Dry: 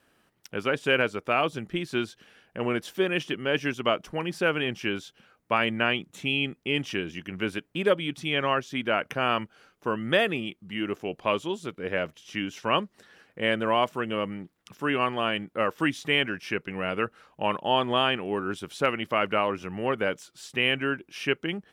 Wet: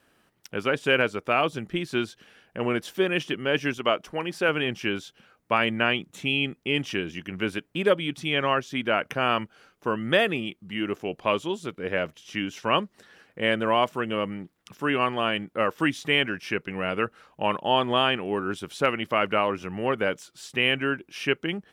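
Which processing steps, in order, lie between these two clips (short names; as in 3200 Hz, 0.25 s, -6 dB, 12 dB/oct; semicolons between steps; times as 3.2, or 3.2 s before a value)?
3.78–4.49 tone controls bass -6 dB, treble -1 dB; gain +1.5 dB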